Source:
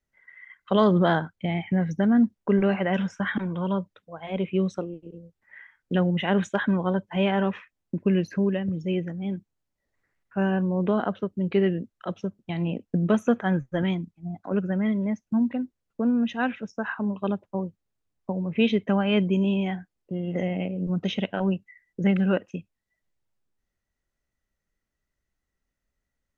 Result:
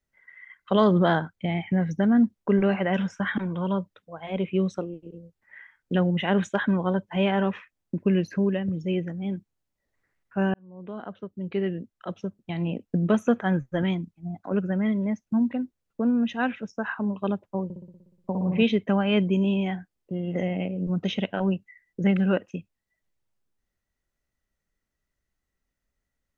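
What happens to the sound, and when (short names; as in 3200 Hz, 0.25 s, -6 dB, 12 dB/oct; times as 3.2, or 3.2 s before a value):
10.54–13.36 fade in equal-power
17.64–18.63 flutter echo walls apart 10.3 m, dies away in 1 s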